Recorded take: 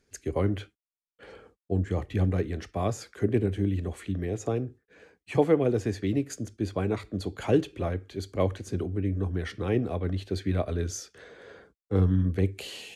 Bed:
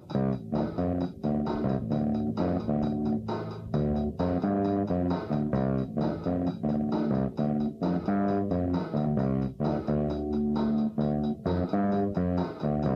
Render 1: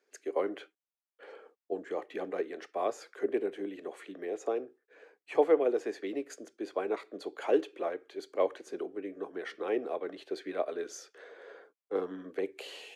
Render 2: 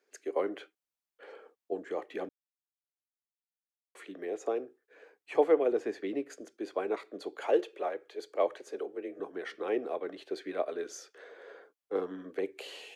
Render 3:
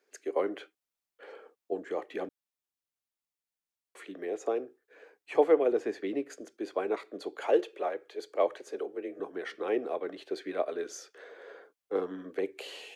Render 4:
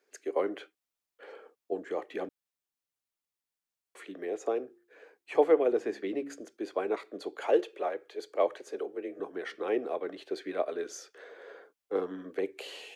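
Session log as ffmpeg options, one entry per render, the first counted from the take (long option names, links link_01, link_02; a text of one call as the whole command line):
ffmpeg -i in.wav -af "highpass=frequency=380:width=0.5412,highpass=frequency=380:width=1.3066,highshelf=frequency=3100:gain=-11" out.wav
ffmpeg -i in.wav -filter_complex "[0:a]asettb=1/sr,asplit=3[link_01][link_02][link_03];[link_01]atrim=end=5.724[link_04];[link_02]atrim=start=5.72:end=6.41,asetpts=PTS-STARTPTS,afade=type=in:duration=0.004:curve=qsin,afade=type=out:start_time=0.686:duration=0.004:curve=qsin,bass=frequency=250:gain=6,treble=frequency=4000:gain=-4[link_05];[link_03]atrim=start=6.406[link_06];[link_04][link_05]acrossfade=duration=0.004:curve1=hsin:curve2=qsin[link_07];[link_07][link_06]acrossfade=duration=0.004:curve1=qsin:curve2=hsin,asettb=1/sr,asplit=3[link_08][link_09][link_10];[link_08]atrim=end=7.474[link_11];[link_09]atrim=start=7.47:end=9.2,asetpts=PTS-STARTPTS,afade=type=in:duration=0.004:curve=qsin,afade=type=out:start_time=1.726:duration=0.004:curve=qsin,afreqshift=36[link_12];[link_10]atrim=start=9.196[link_13];[link_11][link_12]acrossfade=duration=0.004:curve1=hsin:curve2=qsin[link_14];[link_14][link_13]acrossfade=duration=0.004:curve1=qsin:curve2=hsin,asplit=3[link_15][link_16][link_17];[link_15]atrim=end=2.29,asetpts=PTS-STARTPTS,afade=type=out:start_time=2.286:duration=0.004:curve=hsin[link_18];[link_16]atrim=start=2.29:end=3.95,asetpts=PTS-STARTPTS,volume=0[link_19];[link_17]atrim=start=3.95,asetpts=PTS-STARTPTS,afade=type=in:duration=0.004:curve=hsin[link_20];[link_18][link_19][link_20]concat=n=3:v=0:a=1" out.wav
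ffmpeg -i in.wav -af "volume=1.5dB" out.wav
ffmpeg -i in.wav -filter_complex "[0:a]asettb=1/sr,asplit=3[link_01][link_02][link_03];[link_01]atrim=end=4.584[link_04];[link_02]atrim=start=4.58:end=6.4,asetpts=PTS-STARTPTS,afade=type=in:duration=0.004:curve=qsin,afade=type=out:start_time=1.816:duration=0.004:curve=qsin,bandreject=frequency=70.18:width_type=h:width=4,bandreject=frequency=140.36:width_type=h:width=4,bandreject=frequency=210.54:width_type=h:width=4,bandreject=frequency=280.72:width_type=h:width=4,bandreject=frequency=350.9:width_type=h:width=4[link_05];[link_03]atrim=start=6.396[link_06];[link_04][link_05]acrossfade=duration=0.004:curve1=hsin:curve2=qsin[link_07];[link_07][link_06]acrossfade=duration=0.004:curve1=qsin:curve2=hsin" out.wav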